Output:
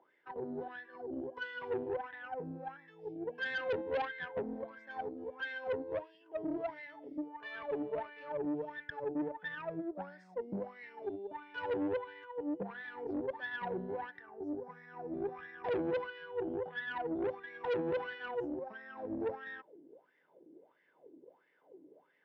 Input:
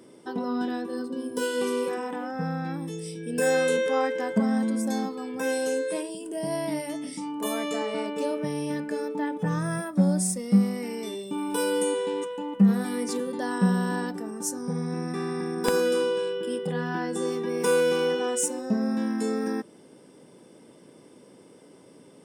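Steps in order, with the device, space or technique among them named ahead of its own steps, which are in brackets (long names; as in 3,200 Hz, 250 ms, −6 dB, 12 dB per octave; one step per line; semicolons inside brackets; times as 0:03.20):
wah-wah guitar rig (LFO wah 1.5 Hz 300–1,900 Hz, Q 10; tube saturation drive 37 dB, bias 0.6; loudspeaker in its box 90–4,200 Hz, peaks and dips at 160 Hz +4 dB, 220 Hz −7 dB, 1,200 Hz −8 dB)
level +7.5 dB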